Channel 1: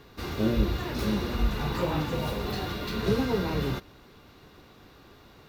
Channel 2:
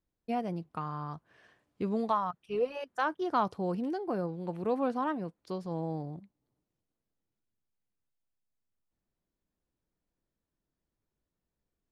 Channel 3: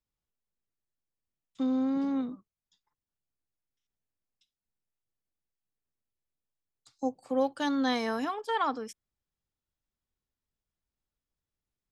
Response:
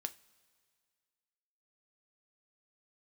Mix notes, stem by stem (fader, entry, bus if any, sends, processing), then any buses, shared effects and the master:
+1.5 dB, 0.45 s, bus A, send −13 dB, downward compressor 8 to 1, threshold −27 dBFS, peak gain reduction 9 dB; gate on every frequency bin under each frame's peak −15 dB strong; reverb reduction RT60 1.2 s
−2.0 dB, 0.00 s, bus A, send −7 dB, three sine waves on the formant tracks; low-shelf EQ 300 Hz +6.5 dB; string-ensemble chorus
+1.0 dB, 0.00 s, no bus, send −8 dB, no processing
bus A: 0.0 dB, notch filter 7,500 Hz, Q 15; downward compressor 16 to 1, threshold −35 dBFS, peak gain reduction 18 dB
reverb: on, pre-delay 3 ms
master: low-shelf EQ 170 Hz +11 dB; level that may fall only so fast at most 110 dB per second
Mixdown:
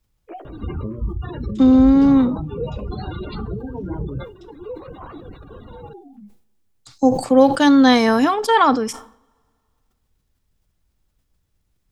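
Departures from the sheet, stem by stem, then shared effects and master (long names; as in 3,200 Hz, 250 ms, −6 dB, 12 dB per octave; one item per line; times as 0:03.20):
stem 1 +1.5 dB → +9.0 dB
stem 3 +1.0 dB → +11.5 dB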